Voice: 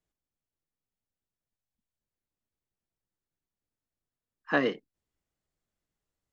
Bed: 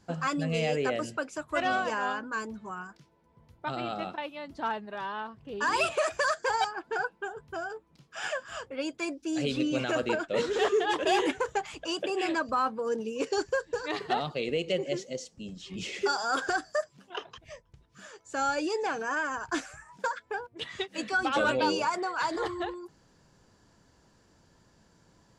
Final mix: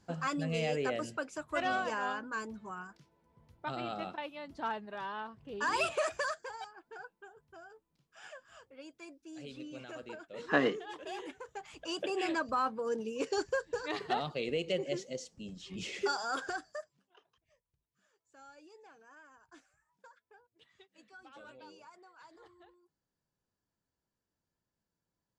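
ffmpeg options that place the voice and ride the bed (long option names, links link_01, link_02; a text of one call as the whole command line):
ffmpeg -i stem1.wav -i stem2.wav -filter_complex "[0:a]adelay=6000,volume=-2dB[link_01];[1:a]volume=8.5dB,afade=type=out:start_time=6.09:duration=0.42:silence=0.237137,afade=type=in:start_time=11.52:duration=0.5:silence=0.223872,afade=type=out:start_time=16:duration=1.11:silence=0.0707946[link_02];[link_01][link_02]amix=inputs=2:normalize=0" out.wav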